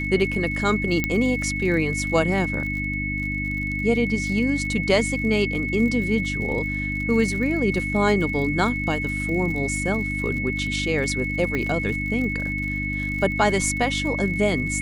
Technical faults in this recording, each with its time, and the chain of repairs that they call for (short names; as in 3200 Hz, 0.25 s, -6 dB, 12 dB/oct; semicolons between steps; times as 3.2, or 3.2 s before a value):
crackle 53/s -31 dBFS
hum 50 Hz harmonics 6 -29 dBFS
tone 2200 Hz -27 dBFS
1.04 pop -8 dBFS
11.55 pop -14 dBFS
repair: de-click; de-hum 50 Hz, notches 6; notch 2200 Hz, Q 30